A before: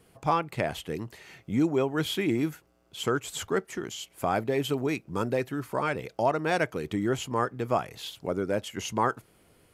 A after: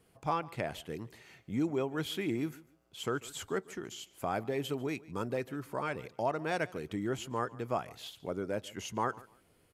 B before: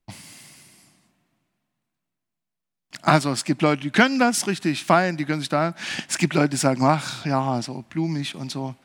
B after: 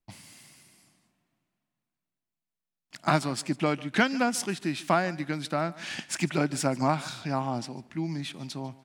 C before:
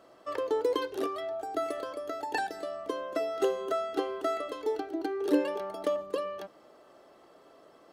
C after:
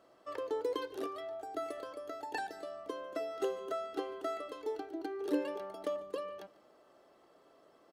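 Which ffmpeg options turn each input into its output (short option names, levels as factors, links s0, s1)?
-af "aecho=1:1:146|292:0.0891|0.0205,volume=0.447"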